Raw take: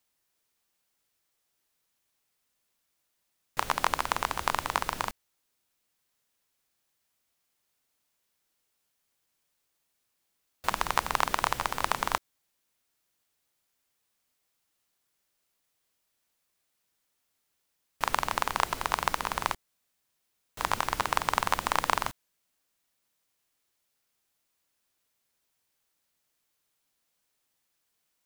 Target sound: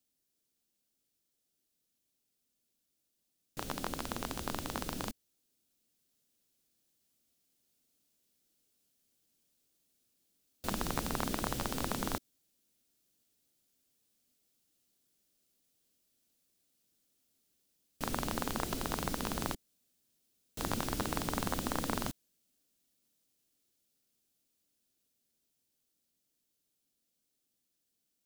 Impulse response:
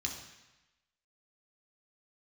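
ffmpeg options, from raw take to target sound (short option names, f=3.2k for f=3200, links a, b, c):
-af "equalizer=f=250:t=o:w=1:g=8,equalizer=f=1k:t=o:w=1:g=-11,equalizer=f=2k:t=o:w=1:g=-7,dynaudnorm=f=820:g=13:m=11.5dB,asoftclip=type=hard:threshold=-15.5dB,volume=-3.5dB"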